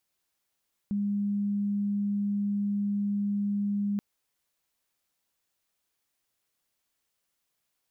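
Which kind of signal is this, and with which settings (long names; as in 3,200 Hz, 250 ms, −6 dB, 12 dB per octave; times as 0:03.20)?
tone sine 203 Hz −25.5 dBFS 3.08 s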